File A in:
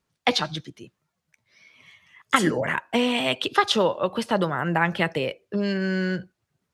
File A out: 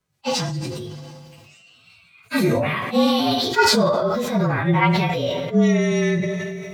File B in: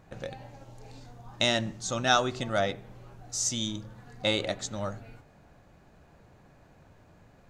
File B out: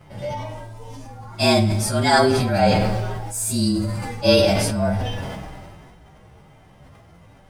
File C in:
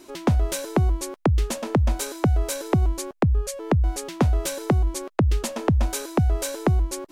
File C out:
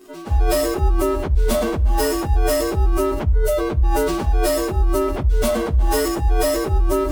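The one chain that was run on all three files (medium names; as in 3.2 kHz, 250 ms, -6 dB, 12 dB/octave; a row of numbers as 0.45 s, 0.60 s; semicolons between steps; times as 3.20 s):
frequency axis rescaled in octaves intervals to 110%; band-stop 1.8 kHz, Q 22; harmonic-percussive split percussive -14 dB; two-slope reverb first 0.45 s, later 2.2 s, from -18 dB, DRR 9.5 dB; decay stretcher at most 26 dB/s; normalise loudness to -20 LUFS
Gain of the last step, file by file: +7.5 dB, +14.0 dB, +5.5 dB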